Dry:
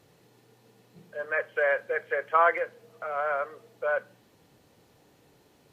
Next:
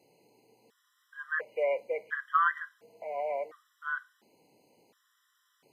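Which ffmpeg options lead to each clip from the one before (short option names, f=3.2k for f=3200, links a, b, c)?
-af "highpass=240,afftfilt=real='re*gt(sin(2*PI*0.71*pts/sr)*(1-2*mod(floor(b*sr/1024/1000),2)),0)':imag='im*gt(sin(2*PI*0.71*pts/sr)*(1-2*mod(floor(b*sr/1024/1000),2)),0)':win_size=1024:overlap=0.75,volume=-2dB"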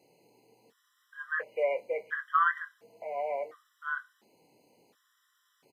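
-filter_complex "[0:a]asplit=2[a][b];[b]adelay=24,volume=-11dB[c];[a][c]amix=inputs=2:normalize=0"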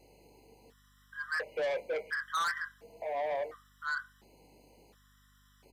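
-af "aeval=exprs='val(0)+0.000355*(sin(2*PI*50*n/s)+sin(2*PI*2*50*n/s)/2+sin(2*PI*3*50*n/s)/3+sin(2*PI*4*50*n/s)/4+sin(2*PI*5*50*n/s)/5)':c=same,asoftclip=type=tanh:threshold=-32.5dB,volume=3.5dB"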